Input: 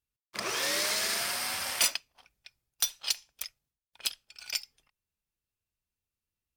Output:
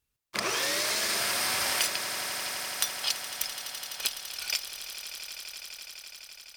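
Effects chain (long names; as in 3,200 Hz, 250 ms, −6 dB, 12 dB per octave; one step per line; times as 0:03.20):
downward compressor, threshold −35 dBFS, peak gain reduction 13.5 dB
on a send: echo that builds up and dies away 84 ms, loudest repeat 8, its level −15 dB
on the sum: level +8.5 dB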